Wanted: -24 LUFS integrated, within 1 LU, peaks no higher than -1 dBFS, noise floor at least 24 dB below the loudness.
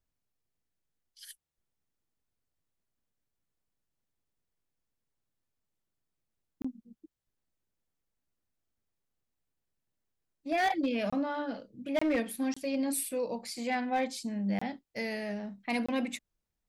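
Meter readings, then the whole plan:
clipped samples 0.4%; clipping level -23.5 dBFS; dropouts 6; longest dropout 25 ms; loudness -33.0 LUFS; peak level -23.5 dBFS; loudness target -24.0 LUFS
-> clip repair -23.5 dBFS; interpolate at 6.62/11.10/11.99/12.54/14.59/15.86 s, 25 ms; trim +9 dB

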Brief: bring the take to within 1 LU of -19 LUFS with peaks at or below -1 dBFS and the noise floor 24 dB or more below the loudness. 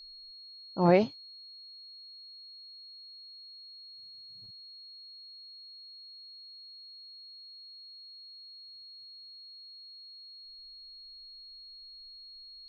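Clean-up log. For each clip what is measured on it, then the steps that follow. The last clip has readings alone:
steady tone 4.3 kHz; tone level -47 dBFS; loudness -38.5 LUFS; peak level -10.5 dBFS; loudness target -19.0 LUFS
-> band-stop 4.3 kHz, Q 30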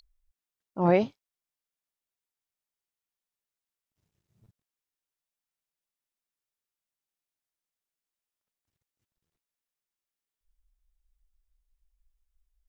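steady tone not found; loudness -26.0 LUFS; peak level -10.5 dBFS; loudness target -19.0 LUFS
-> trim +7 dB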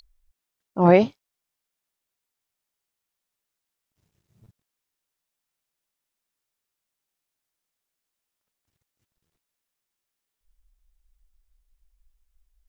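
loudness -19.0 LUFS; peak level -3.5 dBFS; noise floor -85 dBFS

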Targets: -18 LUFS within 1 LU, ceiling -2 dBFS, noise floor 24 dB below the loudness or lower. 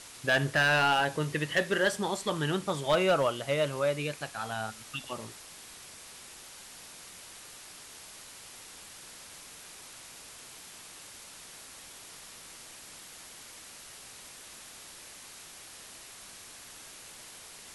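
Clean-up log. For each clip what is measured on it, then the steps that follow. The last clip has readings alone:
clipped samples 0.2%; clipping level -18.5 dBFS; noise floor -49 dBFS; noise floor target -53 dBFS; loudness -29.0 LUFS; peak level -18.5 dBFS; loudness target -18.0 LUFS
-> clip repair -18.5 dBFS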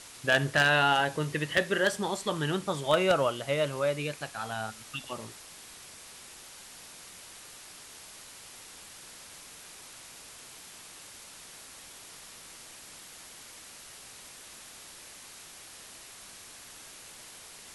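clipped samples 0.0%; noise floor -49 dBFS; noise floor target -52 dBFS
-> noise print and reduce 6 dB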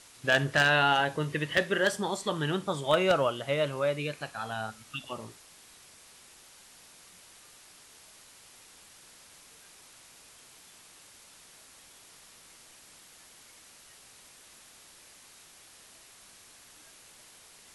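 noise floor -55 dBFS; loudness -28.0 LUFS; peak level -9.5 dBFS; loudness target -18.0 LUFS
-> trim +10 dB; peak limiter -2 dBFS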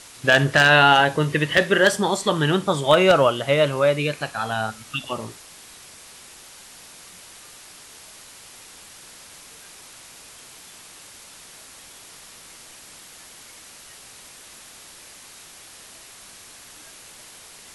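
loudness -18.5 LUFS; peak level -2.0 dBFS; noise floor -45 dBFS

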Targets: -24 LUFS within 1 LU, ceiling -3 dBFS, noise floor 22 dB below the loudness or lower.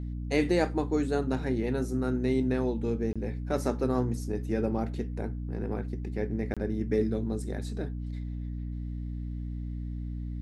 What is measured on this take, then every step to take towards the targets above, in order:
dropouts 2; longest dropout 26 ms; hum 60 Hz; highest harmonic 300 Hz; hum level -32 dBFS; loudness -31.5 LUFS; peak level -12.5 dBFS; loudness target -24.0 LUFS
-> interpolate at 3.13/6.54 s, 26 ms; de-hum 60 Hz, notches 5; trim +7.5 dB

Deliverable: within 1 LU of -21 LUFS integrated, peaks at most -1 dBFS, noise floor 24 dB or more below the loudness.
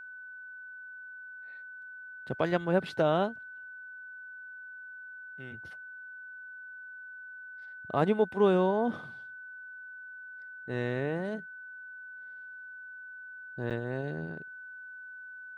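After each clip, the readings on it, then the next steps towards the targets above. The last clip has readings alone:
dropouts 1; longest dropout 7.7 ms; steady tone 1.5 kHz; tone level -43 dBFS; loudness -35.0 LUFS; peak level -13.0 dBFS; loudness target -21.0 LUFS
-> interpolate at 13.70 s, 7.7 ms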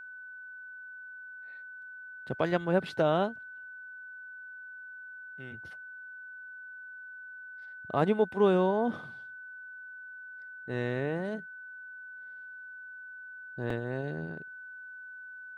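dropouts 0; steady tone 1.5 kHz; tone level -43 dBFS
-> band-stop 1.5 kHz, Q 30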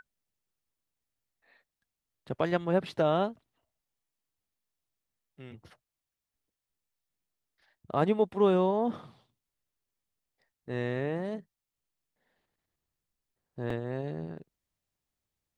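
steady tone not found; loudness -30.0 LUFS; peak level -13.0 dBFS; loudness target -21.0 LUFS
-> trim +9 dB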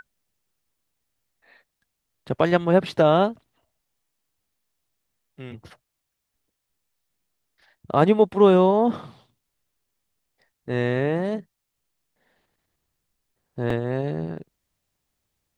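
loudness -21.0 LUFS; peak level -4.0 dBFS; noise floor -80 dBFS

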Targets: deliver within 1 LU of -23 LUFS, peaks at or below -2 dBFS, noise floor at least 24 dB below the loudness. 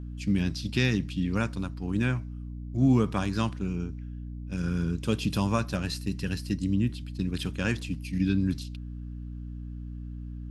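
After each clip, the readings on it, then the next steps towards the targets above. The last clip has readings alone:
hum 60 Hz; highest harmonic 300 Hz; hum level -35 dBFS; loudness -29.0 LUFS; peak level -11.5 dBFS; loudness target -23.0 LUFS
-> hum notches 60/120/180/240/300 Hz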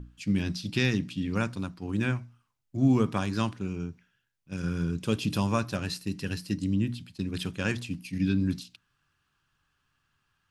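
hum not found; loudness -30.0 LUFS; peak level -11.5 dBFS; loudness target -23.0 LUFS
-> trim +7 dB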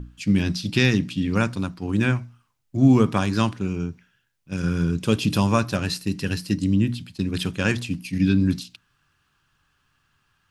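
loudness -23.0 LUFS; peak level -4.5 dBFS; noise floor -70 dBFS

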